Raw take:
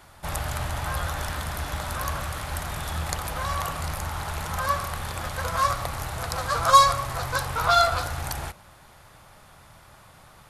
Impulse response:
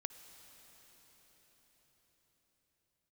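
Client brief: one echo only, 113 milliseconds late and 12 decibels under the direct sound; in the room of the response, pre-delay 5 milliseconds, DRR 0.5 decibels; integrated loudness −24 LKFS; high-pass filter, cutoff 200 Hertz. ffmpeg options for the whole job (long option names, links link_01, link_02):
-filter_complex "[0:a]highpass=200,aecho=1:1:113:0.251,asplit=2[link_01][link_02];[1:a]atrim=start_sample=2205,adelay=5[link_03];[link_02][link_03]afir=irnorm=-1:irlink=0,volume=2dB[link_04];[link_01][link_04]amix=inputs=2:normalize=0,volume=1dB"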